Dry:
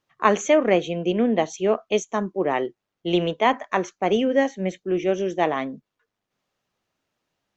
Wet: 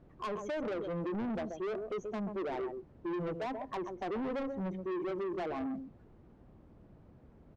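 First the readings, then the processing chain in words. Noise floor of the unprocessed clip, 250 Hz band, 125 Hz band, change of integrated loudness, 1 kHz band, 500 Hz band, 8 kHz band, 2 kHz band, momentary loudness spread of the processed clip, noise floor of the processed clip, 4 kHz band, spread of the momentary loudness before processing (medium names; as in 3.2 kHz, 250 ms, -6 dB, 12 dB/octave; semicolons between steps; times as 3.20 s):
-84 dBFS, -12.5 dB, -11.5 dB, -15.0 dB, -16.5 dB, -15.0 dB, no reading, -18.0 dB, 4 LU, -60 dBFS, -21.0 dB, 8 LU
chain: spectral contrast enhancement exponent 1.7; compression 5:1, threshold -23 dBFS, peak gain reduction 10 dB; companded quantiser 6-bit; added noise brown -48 dBFS; band-pass filter 270 Hz, Q 0.52; delay 132 ms -12 dB; saturation -33.5 dBFS, distortion -7 dB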